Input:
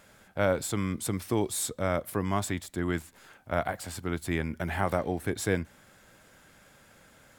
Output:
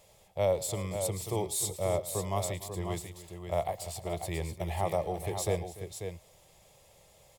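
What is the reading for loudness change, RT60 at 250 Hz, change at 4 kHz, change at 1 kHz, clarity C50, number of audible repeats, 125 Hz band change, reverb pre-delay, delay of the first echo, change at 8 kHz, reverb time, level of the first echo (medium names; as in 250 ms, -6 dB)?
-2.5 dB, no reverb, -1.0 dB, -2.0 dB, no reverb, 3, -2.0 dB, no reverb, 110 ms, +0.5 dB, no reverb, -18.0 dB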